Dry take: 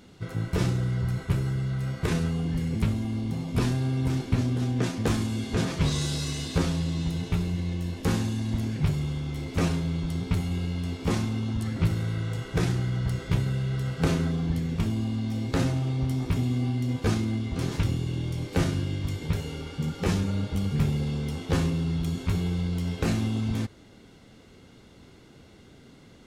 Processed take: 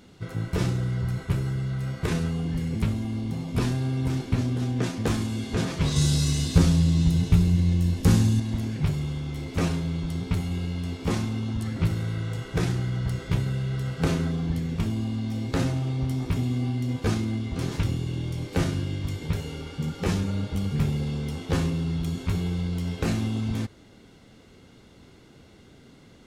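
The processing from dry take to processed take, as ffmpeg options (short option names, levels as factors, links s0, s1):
-filter_complex "[0:a]asettb=1/sr,asplit=3[s0][s1][s2];[s0]atrim=end=5.964[s3];[s1]atrim=start=5.96:end=8.4,asetpts=PTS-STARTPTS,afade=t=in:d=0.004:c=qsin,afade=t=out:st=2.436:d=0.004:c=qsin,bass=f=250:g=9,treble=f=4000:g=6[s4];[s2]atrim=start=8.396[s5];[s3][s4]acrossfade=d=0.004:c1=hsin:c2=qsin[s6];[s6][s5]acrossfade=d=0.004:c1=qsin:c2=hsin"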